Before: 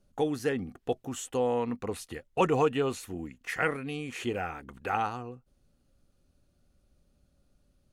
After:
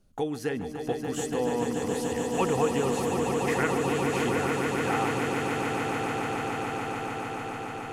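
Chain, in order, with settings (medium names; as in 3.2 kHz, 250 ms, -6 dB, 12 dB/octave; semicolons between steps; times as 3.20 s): band-stop 570 Hz, Q 12; in parallel at +1 dB: compression, threshold -37 dBFS, peak gain reduction 15.5 dB; on the sum: echo with a slow build-up 145 ms, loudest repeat 8, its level -6.5 dB; trim -3.5 dB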